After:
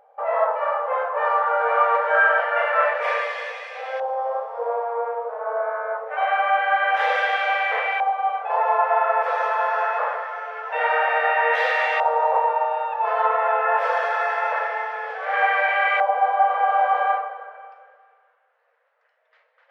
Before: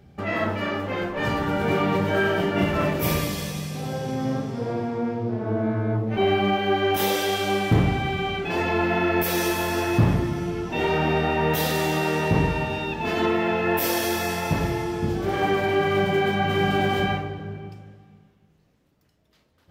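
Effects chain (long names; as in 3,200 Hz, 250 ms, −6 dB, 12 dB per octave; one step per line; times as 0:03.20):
auto-filter low-pass saw up 0.25 Hz 910–2,100 Hz
linear-phase brick-wall band-pass 450–13,000 Hz
level +3.5 dB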